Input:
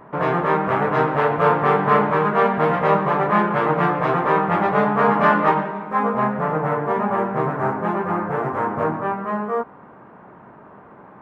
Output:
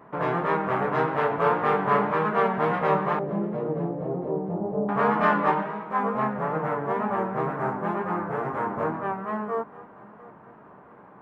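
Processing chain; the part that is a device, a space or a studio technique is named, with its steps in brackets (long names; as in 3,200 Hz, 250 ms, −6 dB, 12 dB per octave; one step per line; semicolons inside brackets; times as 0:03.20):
0:03.19–0:04.89: inverse Chebyshev low-pass filter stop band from 3,400 Hz, stop band 80 dB
mains-hum notches 50/100/150 Hz
multi-head tape echo (echo machine with several playback heads 231 ms, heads first and third, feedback 45%, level −22 dB; tape wow and flutter)
level −5.5 dB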